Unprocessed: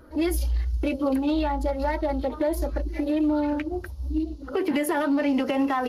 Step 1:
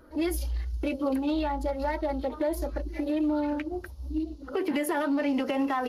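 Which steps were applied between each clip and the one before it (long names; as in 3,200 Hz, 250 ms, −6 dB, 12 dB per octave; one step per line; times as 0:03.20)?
parametric band 92 Hz −5 dB 1.6 octaves
level −3 dB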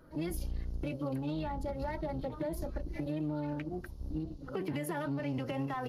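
sub-octave generator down 1 octave, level 0 dB
downward compressor 2.5 to 1, threshold −29 dBFS, peak gain reduction 6 dB
level −5 dB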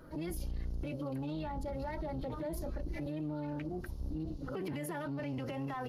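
brickwall limiter −36 dBFS, peak gain reduction 10 dB
level +4.5 dB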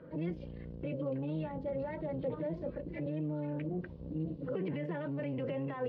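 loudspeaker in its box 110–3,000 Hz, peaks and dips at 170 Hz +9 dB, 500 Hz +10 dB, 790 Hz −6 dB, 1,300 Hz −6 dB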